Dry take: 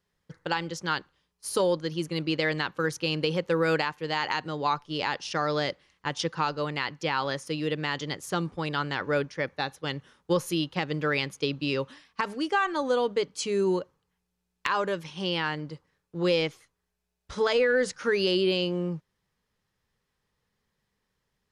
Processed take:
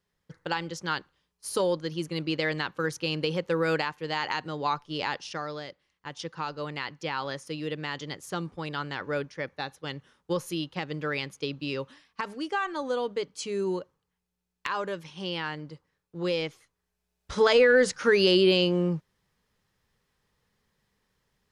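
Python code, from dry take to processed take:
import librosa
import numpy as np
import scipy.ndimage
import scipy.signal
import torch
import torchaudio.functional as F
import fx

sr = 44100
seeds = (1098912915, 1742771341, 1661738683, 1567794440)

y = fx.gain(x, sr, db=fx.line((5.14, -1.5), (5.67, -12.0), (6.7, -4.0), (16.46, -4.0), (17.37, 4.0)))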